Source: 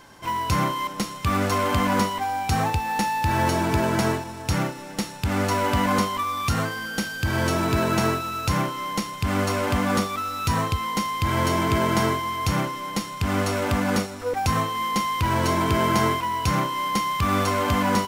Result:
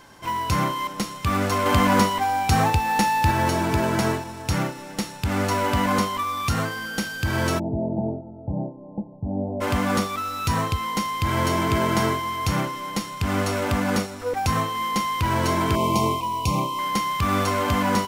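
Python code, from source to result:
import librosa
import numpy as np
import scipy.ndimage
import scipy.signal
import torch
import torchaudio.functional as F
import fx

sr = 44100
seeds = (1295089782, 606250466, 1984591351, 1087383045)

y = fx.cheby_ripple(x, sr, hz=880.0, ripple_db=6, at=(7.58, 9.6), fade=0.02)
y = fx.ellip_bandstop(y, sr, low_hz=1100.0, high_hz=2300.0, order=3, stop_db=50, at=(15.75, 16.79))
y = fx.edit(y, sr, fx.clip_gain(start_s=1.66, length_s=1.65, db=3.5), tone=tone)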